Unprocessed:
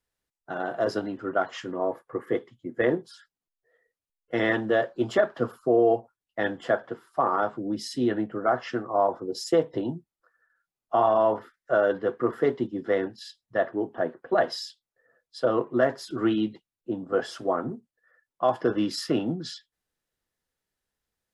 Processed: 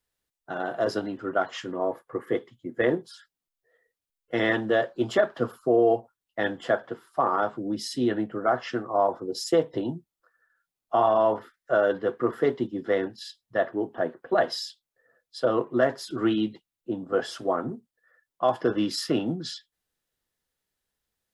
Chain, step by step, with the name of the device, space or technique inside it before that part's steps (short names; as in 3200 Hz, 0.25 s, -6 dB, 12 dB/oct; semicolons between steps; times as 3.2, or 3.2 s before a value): presence and air boost (bell 3500 Hz +2.5 dB; high shelf 9100 Hz +5.5 dB)